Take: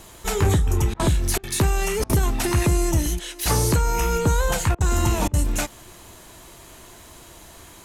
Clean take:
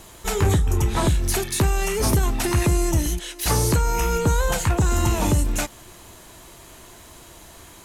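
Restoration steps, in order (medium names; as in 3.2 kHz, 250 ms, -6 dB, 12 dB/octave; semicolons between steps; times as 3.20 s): interpolate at 0.94/1.38/2.04/4.75/5.28 s, 54 ms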